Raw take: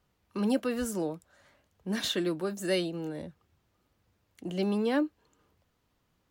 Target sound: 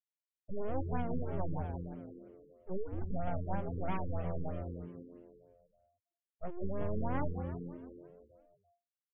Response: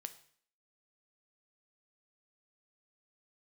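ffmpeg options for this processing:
-filter_complex "[0:a]afftfilt=real='re*gte(hypot(re,im),0.1)':imag='im*gte(hypot(re,im),0.1)':win_size=1024:overlap=0.75,highpass=f=160:w=0.5412,highpass=f=160:w=1.3066,aeval=exprs='abs(val(0))':c=same,atempo=0.69,acompressor=threshold=0.0282:ratio=20,asplit=2[s0][s1];[s1]asplit=8[s2][s3][s4][s5][s6][s7][s8][s9];[s2]adelay=172,afreqshift=-87,volume=0.473[s10];[s3]adelay=344,afreqshift=-174,volume=0.275[s11];[s4]adelay=516,afreqshift=-261,volume=0.158[s12];[s5]adelay=688,afreqshift=-348,volume=0.0923[s13];[s6]adelay=860,afreqshift=-435,volume=0.0537[s14];[s7]adelay=1032,afreqshift=-522,volume=0.0309[s15];[s8]adelay=1204,afreqshift=-609,volume=0.018[s16];[s9]adelay=1376,afreqshift=-696,volume=0.0105[s17];[s10][s11][s12][s13][s14][s15][s16][s17]amix=inputs=8:normalize=0[s18];[s0][s18]amix=inputs=2:normalize=0,afftfilt=real='re*lt(b*sr/1024,480*pow(3500/480,0.5+0.5*sin(2*PI*3.1*pts/sr)))':imag='im*lt(b*sr/1024,480*pow(3500/480,0.5+0.5*sin(2*PI*3.1*pts/sr)))':win_size=1024:overlap=0.75,volume=1.19"

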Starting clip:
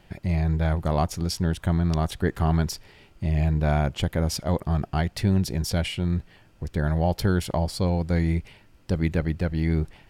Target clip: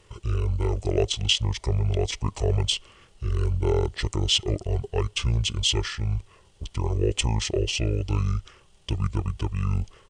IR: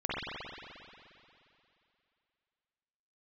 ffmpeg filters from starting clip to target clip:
-af "crystalizer=i=2.5:c=0,asetrate=26222,aresample=44100,atempo=1.68179,equalizer=f=100:t=o:w=0.33:g=3,equalizer=f=250:t=o:w=0.33:g=-11,equalizer=f=400:t=o:w=0.33:g=8,equalizer=f=630:t=o:w=0.33:g=3,equalizer=f=1600:t=o:w=0.33:g=-9,equalizer=f=3150:t=o:w=0.33:g=7,equalizer=f=12500:t=o:w=0.33:g=-5,volume=0.75"

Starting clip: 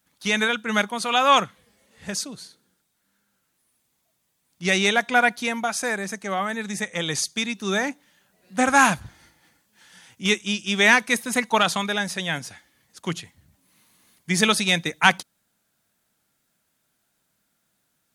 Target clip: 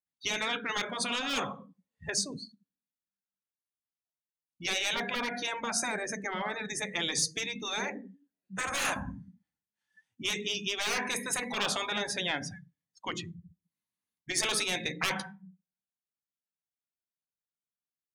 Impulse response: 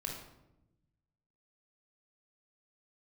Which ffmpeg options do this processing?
-filter_complex "[0:a]asplit=2[s0][s1];[1:a]atrim=start_sample=2205,asetrate=70560,aresample=44100,lowshelf=f=330:g=3.5[s2];[s1][s2]afir=irnorm=-1:irlink=0,volume=0.473[s3];[s0][s3]amix=inputs=2:normalize=0,afftdn=nr=35:nf=-35,asplit=2[s4][s5];[s5]aeval=exprs='(mod(2*val(0)+1,2)-1)/2':c=same,volume=0.355[s6];[s4][s6]amix=inputs=2:normalize=0,aeval=exprs='1.06*(cos(1*acos(clip(val(0)/1.06,-1,1)))-cos(1*PI/2))+0.168*(cos(5*acos(clip(val(0)/1.06,-1,1)))-cos(5*PI/2))':c=same,acompressor=threshold=0.126:ratio=2,afftfilt=real='re*lt(hypot(re,im),0.447)':imag='im*lt(hypot(re,im),0.447)':win_size=1024:overlap=0.75,volume=0.398"

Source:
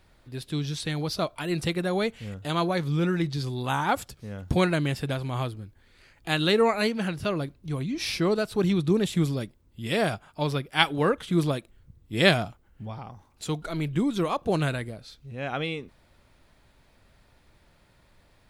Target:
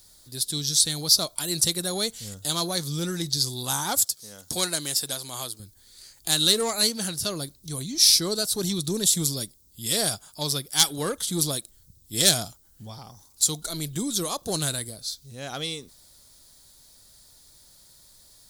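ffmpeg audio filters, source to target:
-filter_complex "[0:a]asettb=1/sr,asplit=3[s0][s1][s2];[s0]atrim=end=4.054[s3];[s1]atrim=start=4.05:end=5.6,asetpts=PTS-STARTPTS,afade=t=in:d=0.004:c=qsin,afade=t=out:st=1.546:d=0.004:c=qsin,highpass=f=450:p=1[s4];[s2]atrim=start=5.596[s5];[s3][s4]acrossfade=d=0.004:c1=hsin:c2=qsin[s6];[s6][s5]acrossfade=d=0.004:c1=qsin:c2=hsin,asoftclip=type=tanh:threshold=0.168,aexciter=amount=14.9:drive=4.2:freq=3900,volume=0.631"

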